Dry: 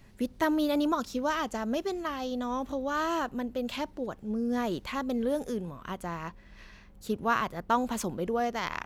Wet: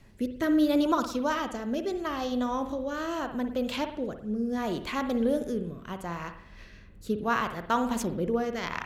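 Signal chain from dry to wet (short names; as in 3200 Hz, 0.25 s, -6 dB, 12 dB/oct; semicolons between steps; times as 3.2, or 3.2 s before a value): rotary speaker horn 0.75 Hz; on a send: reverb, pre-delay 52 ms, DRR 8 dB; on the sum: gain +3 dB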